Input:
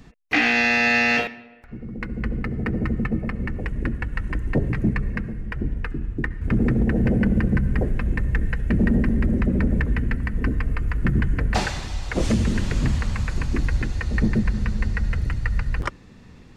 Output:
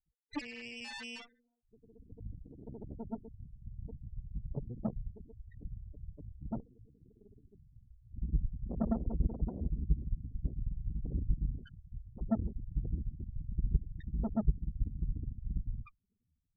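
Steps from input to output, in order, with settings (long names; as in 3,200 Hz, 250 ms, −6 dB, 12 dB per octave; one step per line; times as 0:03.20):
spectral peaks only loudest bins 2
0:06.60–0:08.13: low shelf with overshoot 440 Hz −12.5 dB, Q 1.5
harmonic generator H 3 −10 dB, 8 −27 dB, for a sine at −14.5 dBFS
level −2.5 dB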